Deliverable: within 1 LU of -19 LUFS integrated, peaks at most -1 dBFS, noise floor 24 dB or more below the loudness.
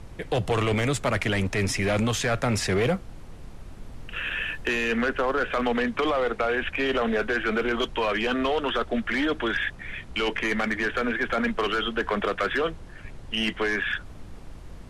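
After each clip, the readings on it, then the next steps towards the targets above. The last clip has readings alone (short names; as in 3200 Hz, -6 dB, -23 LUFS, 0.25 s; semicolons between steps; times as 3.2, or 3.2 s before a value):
clipped 0.4%; flat tops at -17.0 dBFS; noise floor -42 dBFS; noise floor target -50 dBFS; loudness -26.0 LUFS; peak -17.0 dBFS; loudness target -19.0 LUFS
-> clip repair -17 dBFS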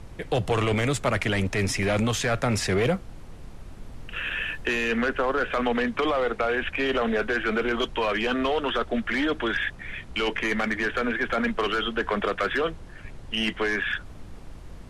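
clipped 0.0%; noise floor -42 dBFS; noise floor target -50 dBFS
-> noise print and reduce 8 dB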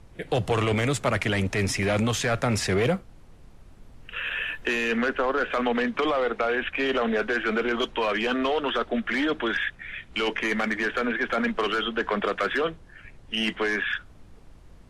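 noise floor -50 dBFS; loudness -26.0 LUFS; peak -9.5 dBFS; loudness target -19.0 LUFS
-> gain +7 dB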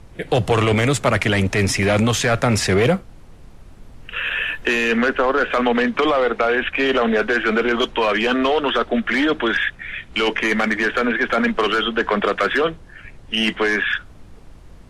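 loudness -19.0 LUFS; peak -2.5 dBFS; noise floor -43 dBFS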